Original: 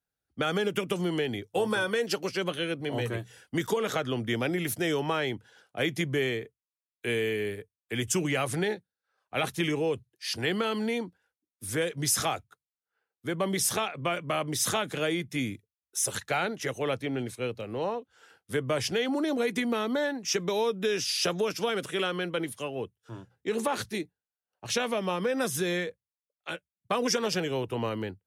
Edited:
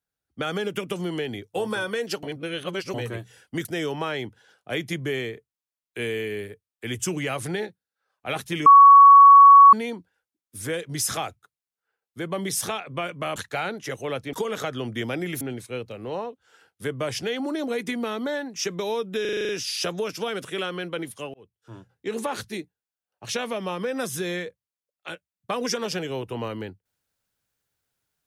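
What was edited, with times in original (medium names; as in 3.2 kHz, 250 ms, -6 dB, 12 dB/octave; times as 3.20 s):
2.23–2.94 s: reverse
3.65–4.73 s: move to 17.10 s
9.74–10.81 s: bleep 1.12 kHz -6.5 dBFS
14.44–16.13 s: delete
20.90 s: stutter 0.04 s, 8 plays
22.75–23.18 s: fade in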